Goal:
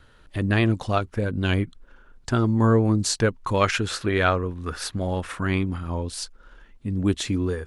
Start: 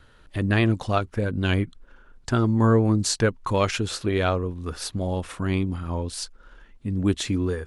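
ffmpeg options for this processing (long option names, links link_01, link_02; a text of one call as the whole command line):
ffmpeg -i in.wav -filter_complex "[0:a]asettb=1/sr,asplit=3[link_01][link_02][link_03];[link_01]atrim=end=3.614[link_04];[link_02]atrim=start=3.61:end=5.78,asetpts=PTS-STARTPTS,afade=type=in:duration=0.004:curve=qsin,afade=type=out:start_time=2.166:duration=0.004:curve=qsin,equalizer=frequency=1600:width=1.2:gain=7.5[link_05];[link_03]atrim=start=5.776[link_06];[link_04][link_05]acrossfade=duration=0.004:curve1=hsin:curve2=qsin[link_07];[link_07][link_06]acrossfade=duration=0.004:curve1=qsin:curve2=hsin" out.wav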